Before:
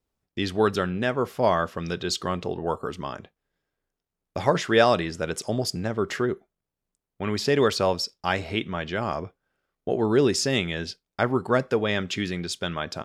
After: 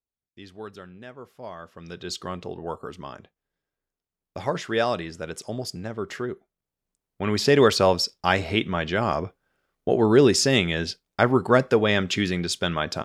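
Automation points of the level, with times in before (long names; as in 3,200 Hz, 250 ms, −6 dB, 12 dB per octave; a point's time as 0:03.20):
0:01.55 −17 dB
0:02.10 −5 dB
0:06.33 −5 dB
0:07.46 +4 dB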